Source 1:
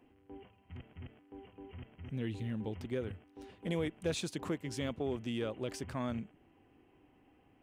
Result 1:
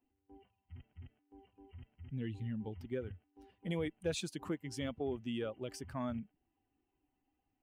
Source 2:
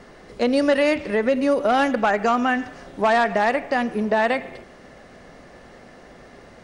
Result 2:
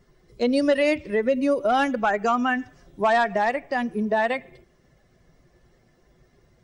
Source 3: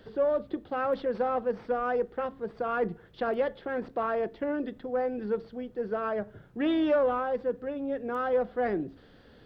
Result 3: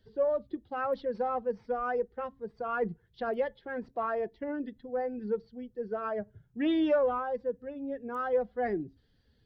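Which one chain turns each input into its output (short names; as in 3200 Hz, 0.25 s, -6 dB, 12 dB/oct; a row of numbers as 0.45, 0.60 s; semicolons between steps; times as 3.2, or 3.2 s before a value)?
per-bin expansion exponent 1.5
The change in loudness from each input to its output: -2.0, -2.5, -2.5 LU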